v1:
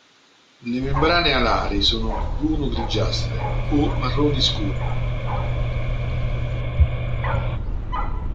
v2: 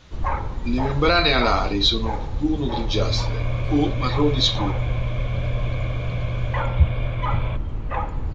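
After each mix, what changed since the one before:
first sound: entry -0.70 s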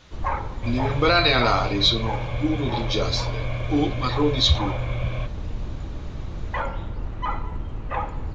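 second sound: entry -2.30 s; master: add low shelf 250 Hz -4 dB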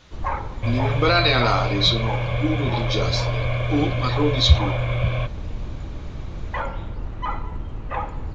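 second sound +6.0 dB

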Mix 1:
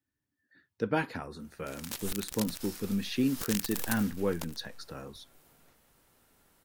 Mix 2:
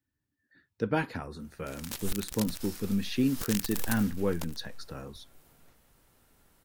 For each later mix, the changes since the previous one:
master: add low shelf 120 Hz +7.5 dB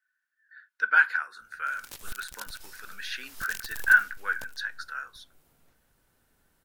speech: add resonant high-pass 1500 Hz, resonance Q 15; background -5.0 dB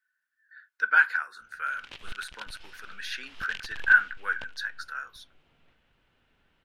background: add synth low-pass 2900 Hz, resonance Q 2.7

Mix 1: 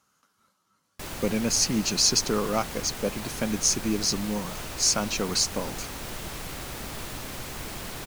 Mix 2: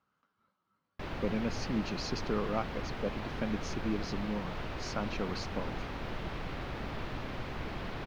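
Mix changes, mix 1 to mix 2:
speech -6.0 dB; master: add air absorption 310 m

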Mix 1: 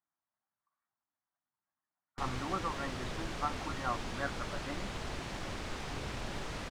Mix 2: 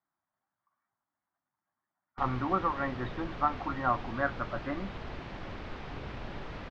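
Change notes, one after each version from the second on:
speech +8.5 dB; master: add air absorption 250 m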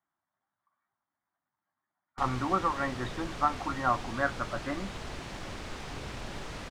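master: remove air absorption 250 m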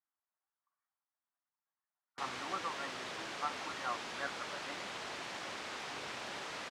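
speech -11.5 dB; master: add weighting filter A

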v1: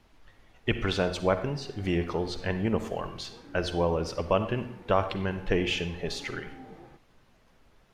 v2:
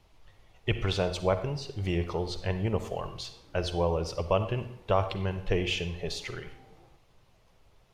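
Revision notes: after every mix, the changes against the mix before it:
background -7.5 dB; master: add fifteen-band EQ 100 Hz +4 dB, 250 Hz -9 dB, 1600 Hz -7 dB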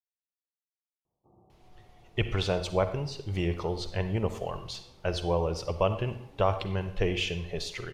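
speech: entry +1.50 s; background: add steep low-pass 1200 Hz 96 dB/oct

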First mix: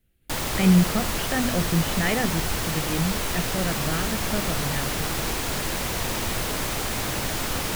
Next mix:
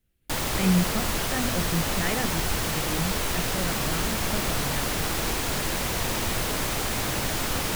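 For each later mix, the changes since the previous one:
speech -5.0 dB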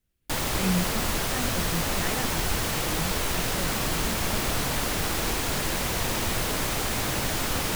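speech -4.5 dB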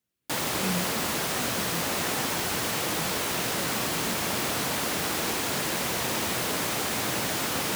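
speech -4.0 dB; master: add HPF 150 Hz 12 dB/oct

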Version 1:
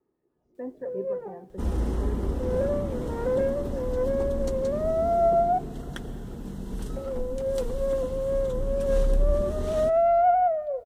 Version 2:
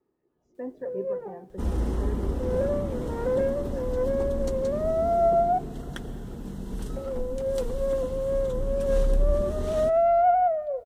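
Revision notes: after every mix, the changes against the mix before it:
speech: remove air absorption 220 m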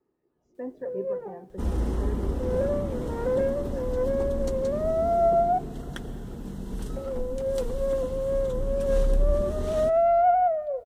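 none

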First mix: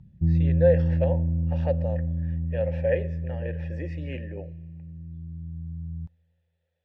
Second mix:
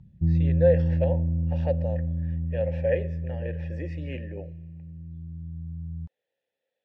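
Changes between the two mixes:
speech: add bell 1200 Hz -6 dB 0.65 oct; background: send off

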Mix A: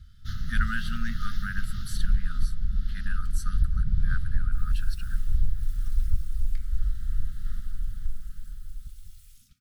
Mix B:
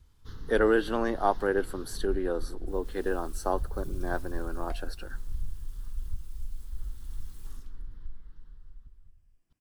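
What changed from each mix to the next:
first sound -10.5 dB; second sound: entry -1.85 s; master: remove brick-wall FIR band-stop 240–1200 Hz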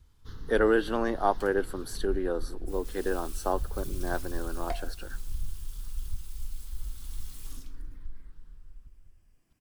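second sound +9.5 dB

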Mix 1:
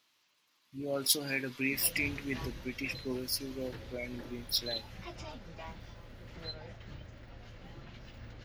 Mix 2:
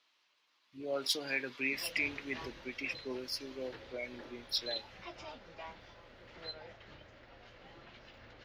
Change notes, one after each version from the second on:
master: add three-band isolator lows -13 dB, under 320 Hz, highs -17 dB, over 5700 Hz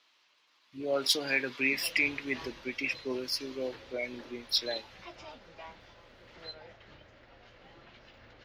speech +6.0 dB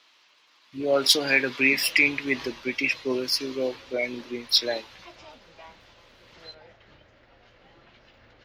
speech +8.0 dB

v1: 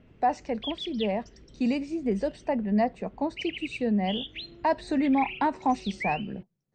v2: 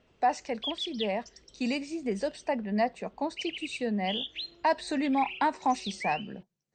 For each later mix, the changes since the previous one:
background: add graphic EQ 125/250/2000 Hz -6/-7/-8 dB; master: add tilt +2.5 dB/oct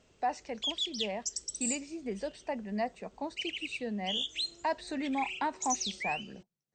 speech -6.0 dB; background: remove LPF 3800 Hz 24 dB/oct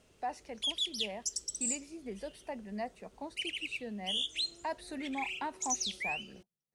speech -5.5 dB; master: remove brick-wall FIR low-pass 8400 Hz

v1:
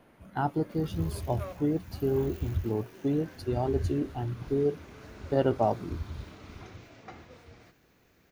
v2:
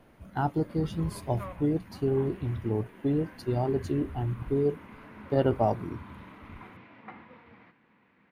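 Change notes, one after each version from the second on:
background: add speaker cabinet 200–2900 Hz, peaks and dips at 210 Hz +8 dB, 390 Hz -7 dB, 650 Hz -6 dB, 980 Hz +9 dB, 2000 Hz +4 dB; master: add low shelf 95 Hz +8 dB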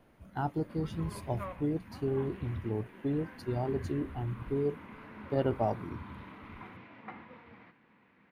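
speech -5.0 dB

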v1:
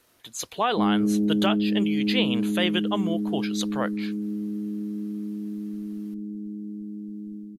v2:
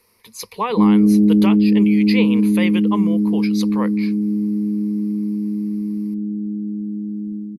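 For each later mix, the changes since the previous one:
speech: add ripple EQ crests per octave 0.87, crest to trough 14 dB; background: add bell 160 Hz +11.5 dB 2.7 oct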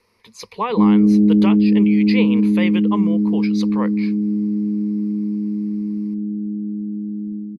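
master: add air absorption 79 m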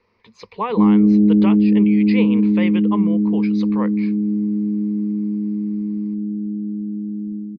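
speech: add air absorption 220 m

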